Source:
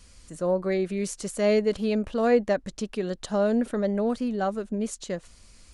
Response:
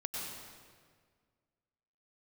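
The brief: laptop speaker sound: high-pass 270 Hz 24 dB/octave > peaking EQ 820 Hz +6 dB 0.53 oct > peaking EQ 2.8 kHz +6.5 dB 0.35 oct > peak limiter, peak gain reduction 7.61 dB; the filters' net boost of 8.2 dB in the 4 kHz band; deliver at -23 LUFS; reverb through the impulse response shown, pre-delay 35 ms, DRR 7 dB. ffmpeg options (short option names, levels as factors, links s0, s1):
-filter_complex "[0:a]equalizer=f=4000:t=o:g=7.5,asplit=2[s0][s1];[1:a]atrim=start_sample=2205,adelay=35[s2];[s1][s2]afir=irnorm=-1:irlink=0,volume=0.355[s3];[s0][s3]amix=inputs=2:normalize=0,highpass=f=270:w=0.5412,highpass=f=270:w=1.3066,equalizer=f=820:t=o:w=0.53:g=6,equalizer=f=2800:t=o:w=0.35:g=6.5,volume=1.78,alimiter=limit=0.266:level=0:latency=1"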